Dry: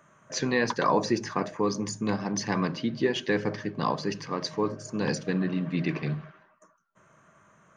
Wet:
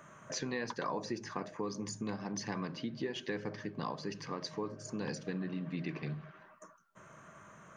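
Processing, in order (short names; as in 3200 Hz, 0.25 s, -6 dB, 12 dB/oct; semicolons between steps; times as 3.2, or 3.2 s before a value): compressor 2.5:1, threshold -47 dBFS, peak gain reduction 18.5 dB; gain +4 dB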